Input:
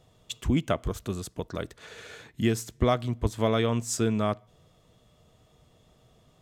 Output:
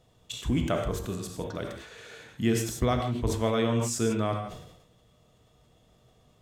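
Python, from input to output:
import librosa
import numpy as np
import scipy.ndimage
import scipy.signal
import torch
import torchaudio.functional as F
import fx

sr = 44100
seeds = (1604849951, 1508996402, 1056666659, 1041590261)

y = fx.rev_gated(x, sr, seeds[0], gate_ms=180, shape='flat', drr_db=4.0)
y = fx.sustainer(y, sr, db_per_s=62.0)
y = F.gain(torch.from_numpy(y), -3.0).numpy()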